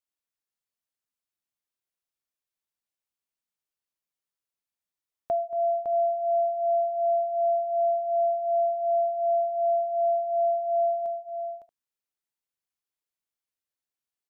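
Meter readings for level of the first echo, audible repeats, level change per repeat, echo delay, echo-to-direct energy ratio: -15.5 dB, 3, no regular repeats, 230 ms, -7.0 dB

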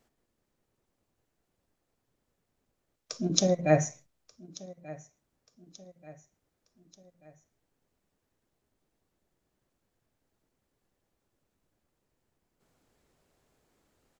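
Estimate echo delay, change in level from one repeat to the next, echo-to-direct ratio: 1185 ms, -6.5 dB, -19.0 dB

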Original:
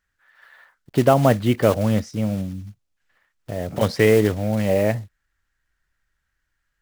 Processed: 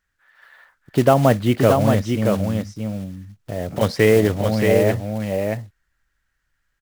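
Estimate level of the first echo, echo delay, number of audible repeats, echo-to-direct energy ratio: -4.5 dB, 626 ms, 1, -4.5 dB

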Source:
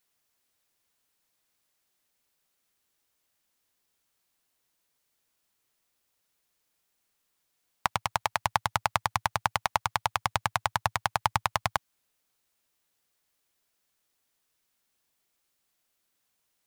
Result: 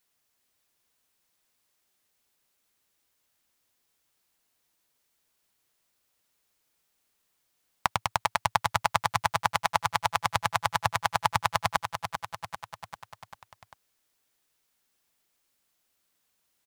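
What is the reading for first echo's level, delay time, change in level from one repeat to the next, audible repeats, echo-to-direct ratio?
-8.0 dB, 394 ms, -4.5 dB, 5, -6.0 dB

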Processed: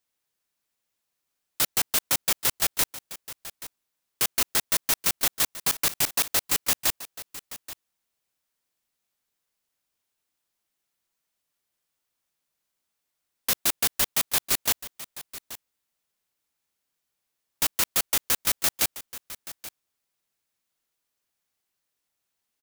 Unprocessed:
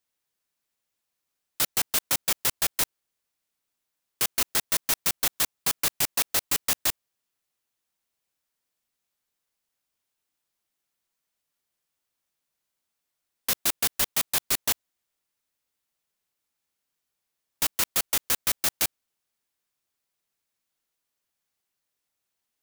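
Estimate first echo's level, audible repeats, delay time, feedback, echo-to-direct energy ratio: -15.5 dB, 1, 830 ms, no regular repeats, -15.5 dB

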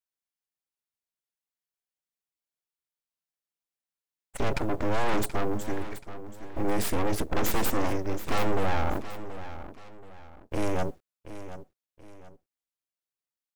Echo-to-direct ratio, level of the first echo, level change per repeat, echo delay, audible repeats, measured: -12.5 dB, -13.0 dB, -9.0 dB, 729 ms, 2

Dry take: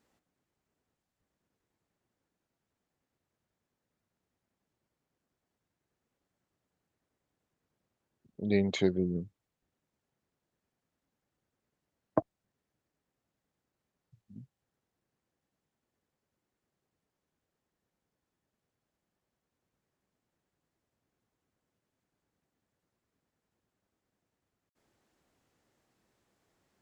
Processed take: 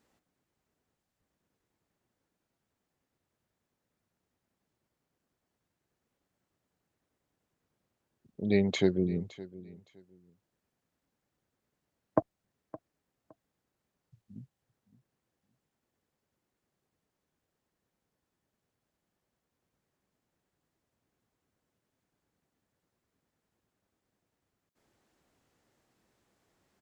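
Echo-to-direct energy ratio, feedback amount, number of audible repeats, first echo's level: -18.5 dB, 21%, 2, -18.5 dB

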